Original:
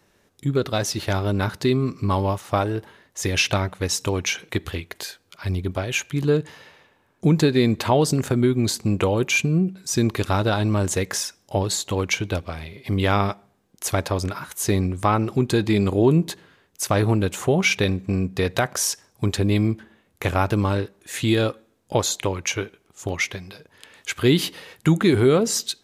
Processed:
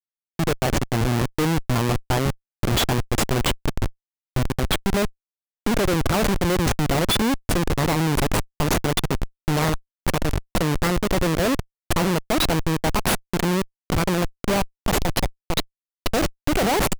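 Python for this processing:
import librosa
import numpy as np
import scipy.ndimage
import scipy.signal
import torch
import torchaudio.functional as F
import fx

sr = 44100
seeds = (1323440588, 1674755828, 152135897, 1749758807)

y = fx.speed_glide(x, sr, from_pct=116, to_pct=188)
y = fx.schmitt(y, sr, flips_db=-20.0)
y = F.gain(torch.from_numpy(y), 3.5).numpy()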